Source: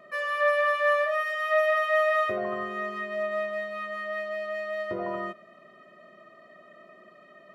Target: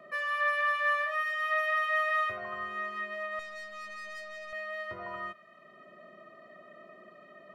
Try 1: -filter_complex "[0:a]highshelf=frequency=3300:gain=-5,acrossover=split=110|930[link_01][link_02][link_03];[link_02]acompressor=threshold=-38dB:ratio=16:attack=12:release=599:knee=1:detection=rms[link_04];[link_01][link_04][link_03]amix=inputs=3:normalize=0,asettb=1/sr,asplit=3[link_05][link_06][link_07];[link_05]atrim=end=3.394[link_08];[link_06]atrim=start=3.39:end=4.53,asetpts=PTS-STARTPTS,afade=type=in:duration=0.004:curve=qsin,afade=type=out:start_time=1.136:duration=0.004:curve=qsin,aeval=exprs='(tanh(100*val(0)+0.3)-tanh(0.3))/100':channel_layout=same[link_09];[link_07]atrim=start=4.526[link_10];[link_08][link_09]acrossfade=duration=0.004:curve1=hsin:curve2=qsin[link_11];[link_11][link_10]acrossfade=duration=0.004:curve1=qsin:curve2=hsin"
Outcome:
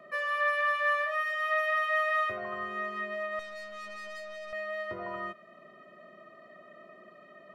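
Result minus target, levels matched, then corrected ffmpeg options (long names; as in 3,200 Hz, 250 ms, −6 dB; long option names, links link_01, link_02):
downward compressor: peak gain reduction −7.5 dB
-filter_complex "[0:a]highshelf=frequency=3300:gain=-5,acrossover=split=110|930[link_01][link_02][link_03];[link_02]acompressor=threshold=-46dB:ratio=16:attack=12:release=599:knee=1:detection=rms[link_04];[link_01][link_04][link_03]amix=inputs=3:normalize=0,asettb=1/sr,asplit=3[link_05][link_06][link_07];[link_05]atrim=end=3.394[link_08];[link_06]atrim=start=3.39:end=4.53,asetpts=PTS-STARTPTS,afade=type=in:duration=0.004:curve=qsin,afade=type=out:start_time=1.136:duration=0.004:curve=qsin,aeval=exprs='(tanh(100*val(0)+0.3)-tanh(0.3))/100':channel_layout=same[link_09];[link_07]atrim=start=4.526[link_10];[link_08][link_09]acrossfade=duration=0.004:curve1=hsin:curve2=qsin[link_11];[link_11][link_10]acrossfade=duration=0.004:curve1=qsin:curve2=hsin"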